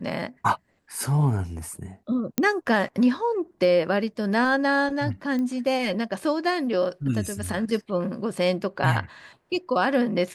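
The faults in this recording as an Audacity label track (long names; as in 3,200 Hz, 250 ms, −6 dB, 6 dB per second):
2.380000	2.380000	click −8 dBFS
5.390000	5.390000	click −20 dBFS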